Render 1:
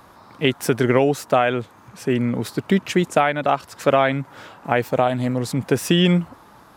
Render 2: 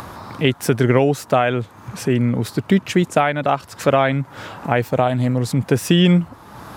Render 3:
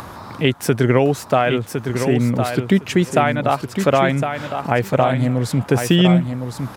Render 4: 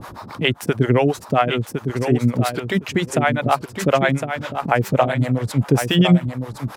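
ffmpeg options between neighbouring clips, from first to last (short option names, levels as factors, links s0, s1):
-filter_complex "[0:a]asplit=2[s0][s1];[s1]acompressor=mode=upward:threshold=0.126:ratio=2.5,volume=1.12[s2];[s0][s2]amix=inputs=2:normalize=0,equalizer=f=100:w=0.89:g=6.5,volume=0.501"
-af "aecho=1:1:1059|2118|3177:0.447|0.067|0.0101"
-filter_complex "[0:a]acrossover=split=440[s0][s1];[s0]aeval=exprs='val(0)*(1-1/2+1/2*cos(2*PI*7.5*n/s))':c=same[s2];[s1]aeval=exprs='val(0)*(1-1/2-1/2*cos(2*PI*7.5*n/s))':c=same[s3];[s2][s3]amix=inputs=2:normalize=0,volume=1.5"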